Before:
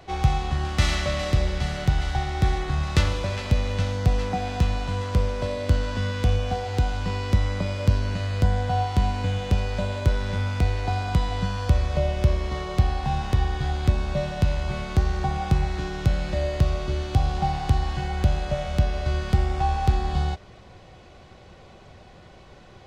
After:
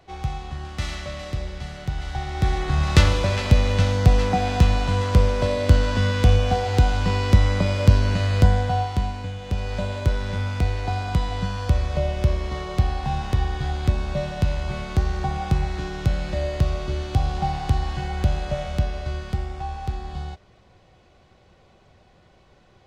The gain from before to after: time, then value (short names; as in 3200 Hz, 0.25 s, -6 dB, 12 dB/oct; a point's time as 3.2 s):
1.84 s -7 dB
2.9 s +5.5 dB
8.42 s +5.5 dB
9.37 s -7 dB
9.73 s 0 dB
18.62 s 0 dB
19.62 s -7.5 dB